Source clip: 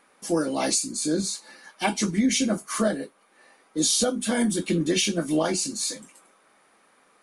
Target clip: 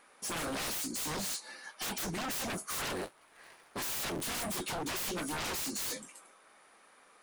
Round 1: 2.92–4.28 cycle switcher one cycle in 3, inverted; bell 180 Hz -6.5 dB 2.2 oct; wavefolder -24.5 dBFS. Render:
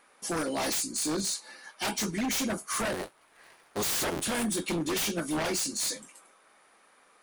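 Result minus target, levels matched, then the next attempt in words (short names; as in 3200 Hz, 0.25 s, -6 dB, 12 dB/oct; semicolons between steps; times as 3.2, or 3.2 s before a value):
wavefolder: distortion -16 dB
2.92–4.28 cycle switcher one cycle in 3, inverted; bell 180 Hz -6.5 dB 2.2 oct; wavefolder -31.5 dBFS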